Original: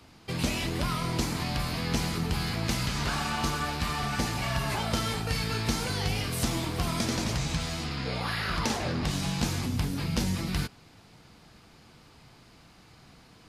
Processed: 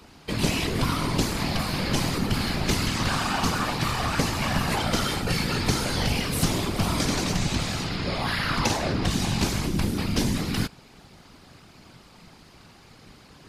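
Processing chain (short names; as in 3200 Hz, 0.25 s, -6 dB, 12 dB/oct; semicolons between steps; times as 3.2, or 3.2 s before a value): whisperiser; gain +4.5 dB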